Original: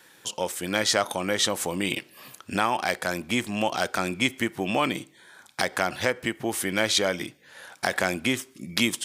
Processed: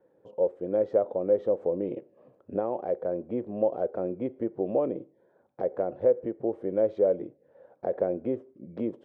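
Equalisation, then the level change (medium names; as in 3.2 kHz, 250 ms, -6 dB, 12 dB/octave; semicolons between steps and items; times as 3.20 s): dynamic bell 420 Hz, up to +5 dB, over -42 dBFS, Q 1.7; resonant low-pass 530 Hz, resonance Q 4; -8.5 dB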